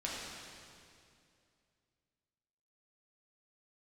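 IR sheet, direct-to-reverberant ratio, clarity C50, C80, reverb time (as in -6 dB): -6.0 dB, -1.5 dB, 0.0 dB, 2.4 s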